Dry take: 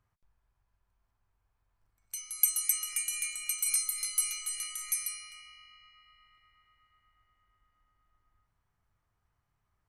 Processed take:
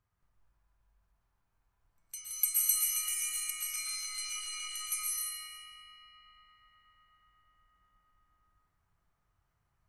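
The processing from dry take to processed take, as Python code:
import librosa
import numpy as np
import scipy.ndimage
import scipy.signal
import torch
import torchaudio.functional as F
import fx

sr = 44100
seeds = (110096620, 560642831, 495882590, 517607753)

y = fx.lowpass(x, sr, hz=5900.0, slope=12, at=(3.5, 4.69))
y = fx.rev_plate(y, sr, seeds[0], rt60_s=1.4, hf_ratio=0.65, predelay_ms=105, drr_db=-4.5)
y = y * librosa.db_to_amplitude(-4.5)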